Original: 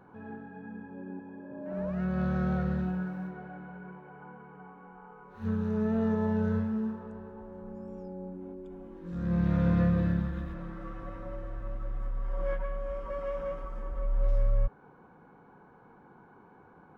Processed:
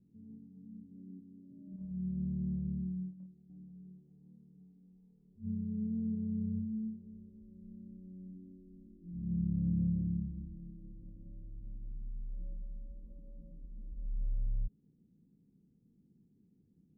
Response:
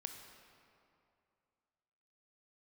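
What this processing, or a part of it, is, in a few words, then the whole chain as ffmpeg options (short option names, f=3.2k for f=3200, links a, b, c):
the neighbour's flat through the wall: -filter_complex "[0:a]lowpass=f=270:w=0.5412,lowpass=f=270:w=1.3066,equalizer=f=200:t=o:w=0.6:g=3.5,asettb=1/sr,asplit=3[a][b][c];[a]atrim=end=1.764[d];[b]atrim=start=1.76:end=3.5,asetpts=PTS-STARTPTS,afade=t=in:d=0.004:c=qsin,afade=t=out:st=1.736:d=0.004:c=qsin,agate=range=-9dB:threshold=-33dB:ratio=16:detection=peak[e];[c]atrim=start=3.496[f];[d][e]acrossfade=d=0.004:c1=hsin:c2=qsin[g];[g][f]acrossfade=d=0.004:c1=qsin:c2=hsin,volume=-8.5dB"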